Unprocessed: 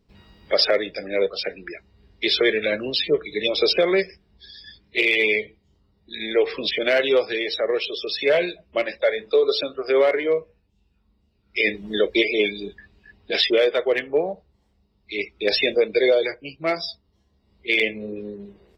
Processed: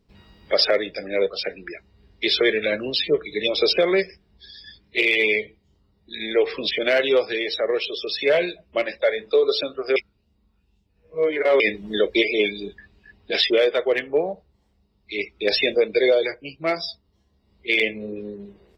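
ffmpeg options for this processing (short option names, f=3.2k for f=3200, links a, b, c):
-filter_complex "[0:a]asplit=3[a][b][c];[a]atrim=end=9.962[d];[b]atrim=start=9.958:end=11.602,asetpts=PTS-STARTPTS,areverse[e];[c]atrim=start=11.598[f];[d][e]acrossfade=d=0.004:c1=hsin:c2=hsin[g];[g][f]acrossfade=d=0.004:c1=hsin:c2=hsin"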